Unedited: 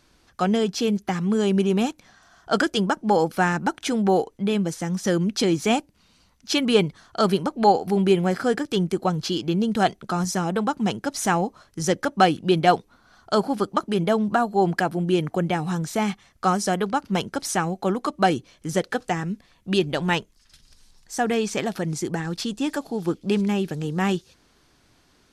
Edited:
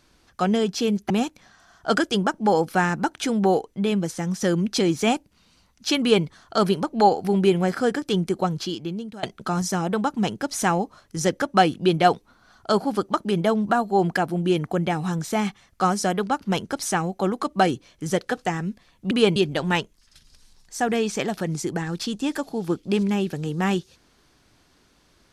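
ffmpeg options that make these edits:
-filter_complex "[0:a]asplit=5[a][b][c][d][e];[a]atrim=end=1.102[f];[b]atrim=start=1.728:end=9.86,asetpts=PTS-STARTPTS,afade=t=out:st=7.312:d=0.82:silence=0.0794328[g];[c]atrim=start=9.86:end=19.742,asetpts=PTS-STARTPTS,afade=t=in:d=0.004:c=hsin:silence=0.0794328[h];[d]atrim=start=6.628:end=6.882[i];[e]atrim=start=19.738[j];[g][h]concat=n=2:v=0:a=1[k];[f][k]acrossfade=d=0.004:c1=hsin:c2=hsin[l];[l][i]acrossfade=d=0.004:c1=hsin:c2=hsin[m];[m][j]acrossfade=d=0.004:c1=hsin:c2=hsin"

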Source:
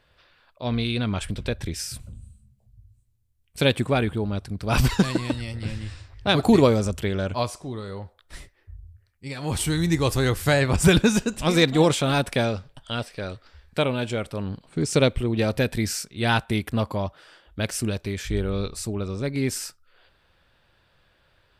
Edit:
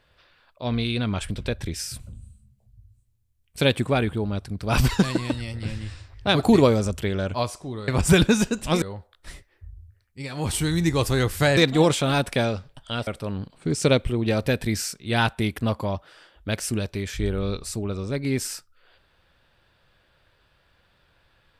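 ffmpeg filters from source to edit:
-filter_complex "[0:a]asplit=5[a][b][c][d][e];[a]atrim=end=7.882[f];[b]atrim=start=10.628:end=11.572[g];[c]atrim=start=7.878:end=10.632[h];[d]atrim=start=11.568:end=13.072[i];[e]atrim=start=14.178[j];[f][g]acrossfade=d=0.004:c1=hsin:c2=hsin[k];[k][h]acrossfade=d=0.004:c1=hsin:c2=hsin[l];[l][i]acrossfade=d=0.004:c1=hsin:c2=hsin[m];[m][j]acrossfade=d=0.004:c1=hsin:c2=hsin"

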